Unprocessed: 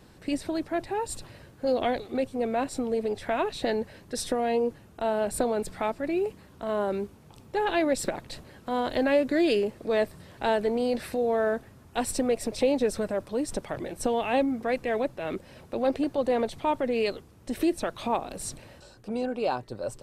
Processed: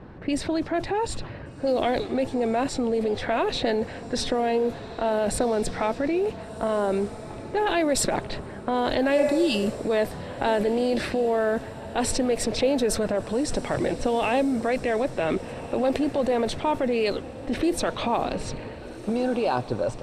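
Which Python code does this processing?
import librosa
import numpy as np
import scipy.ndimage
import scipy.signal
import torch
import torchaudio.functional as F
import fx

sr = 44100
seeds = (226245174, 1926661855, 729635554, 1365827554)

p1 = fx.env_lowpass(x, sr, base_hz=1500.0, full_db=-21.5)
p2 = fx.spec_repair(p1, sr, seeds[0], start_s=9.2, length_s=0.58, low_hz=400.0, high_hz=2600.0, source='both')
p3 = fx.over_compress(p2, sr, threshold_db=-34.0, ratio=-1.0)
p4 = p2 + (p3 * librosa.db_to_amplitude(1.0))
y = fx.echo_diffused(p4, sr, ms=1481, feedback_pct=46, wet_db=-15)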